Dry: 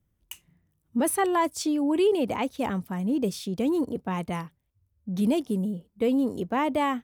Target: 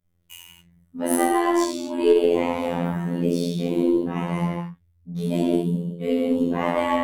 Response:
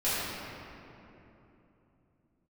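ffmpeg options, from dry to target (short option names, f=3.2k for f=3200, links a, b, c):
-filter_complex "[1:a]atrim=start_sample=2205,afade=t=out:st=0.28:d=0.01,atrim=end_sample=12789,asetrate=36162,aresample=44100[a];[0:a][a]afir=irnorm=-1:irlink=0,afftfilt=real='hypot(re,im)*cos(PI*b)':imag='0':win_size=2048:overlap=0.75,aeval=exprs='1.26*(cos(1*acos(clip(val(0)/1.26,-1,1)))-cos(1*PI/2))+0.112*(cos(2*acos(clip(val(0)/1.26,-1,1)))-cos(2*PI/2))+0.0708*(cos(4*acos(clip(val(0)/1.26,-1,1)))-cos(4*PI/2))':c=same,volume=-4dB"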